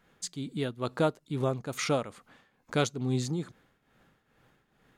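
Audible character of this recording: tremolo triangle 2.3 Hz, depth 75%

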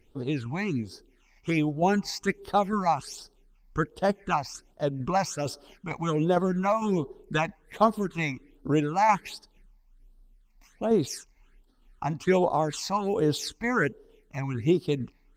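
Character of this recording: tremolo saw down 2.2 Hz, depth 40%; phasing stages 8, 1.3 Hz, lowest notch 410–2300 Hz; Opus

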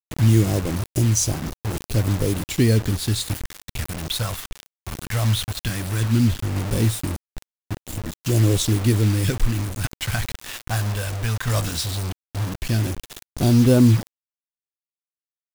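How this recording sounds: phasing stages 2, 0.16 Hz, lowest notch 300–1900 Hz; a quantiser's noise floor 6-bit, dither none; tremolo saw down 0.61 Hz, depth 35%

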